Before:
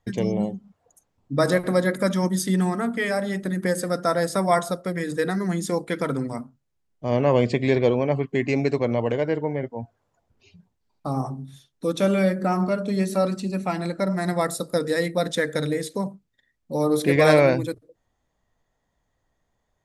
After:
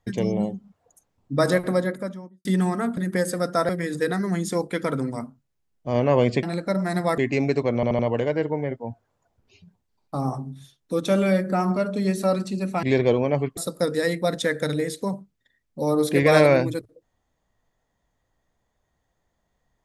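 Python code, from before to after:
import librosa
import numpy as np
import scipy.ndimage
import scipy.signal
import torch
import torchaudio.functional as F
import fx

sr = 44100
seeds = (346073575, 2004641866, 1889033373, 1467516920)

y = fx.studio_fade_out(x, sr, start_s=1.54, length_s=0.91)
y = fx.edit(y, sr, fx.cut(start_s=2.97, length_s=0.5),
    fx.cut(start_s=4.19, length_s=0.67),
    fx.swap(start_s=7.6, length_s=0.74, other_s=13.75, other_length_s=0.75),
    fx.stutter(start_s=8.91, slice_s=0.08, count=4), tone=tone)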